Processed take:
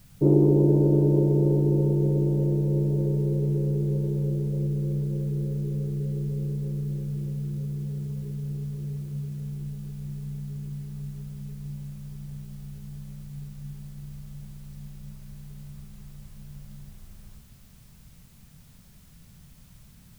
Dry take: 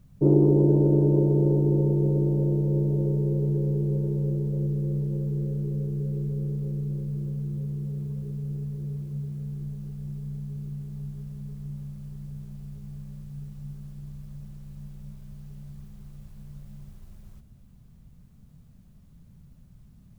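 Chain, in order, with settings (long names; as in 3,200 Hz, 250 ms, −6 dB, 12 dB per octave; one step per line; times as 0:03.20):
bit-depth reduction 10 bits, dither triangular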